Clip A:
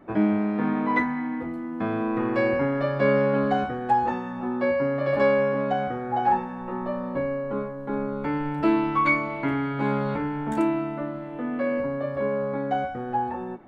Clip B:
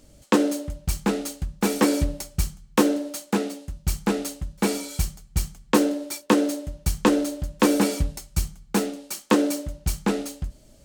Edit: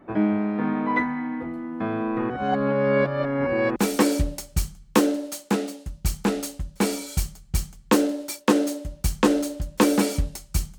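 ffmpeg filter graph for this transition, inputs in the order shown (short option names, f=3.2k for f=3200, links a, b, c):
-filter_complex "[0:a]apad=whole_dur=10.78,atrim=end=10.78,asplit=2[a][b];[a]atrim=end=2.302[c];[b]atrim=start=2.298:end=3.762,asetpts=PTS-STARTPTS,areverse[d];[1:a]atrim=start=1.578:end=8.6[e];[c][d]acrossfade=d=0.004:c1=hsin:c2=hsin[f];[f][e]acrossfade=d=0.004:c1=hsin:c2=hsin"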